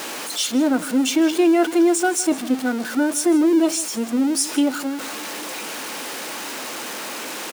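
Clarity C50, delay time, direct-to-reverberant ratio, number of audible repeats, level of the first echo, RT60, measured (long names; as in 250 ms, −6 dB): no reverb audible, 160 ms, no reverb audible, 1, −17.5 dB, no reverb audible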